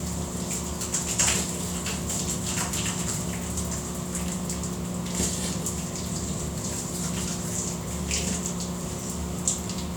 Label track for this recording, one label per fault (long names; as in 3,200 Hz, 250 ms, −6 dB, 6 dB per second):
1.610000	2.160000	clipping −24 dBFS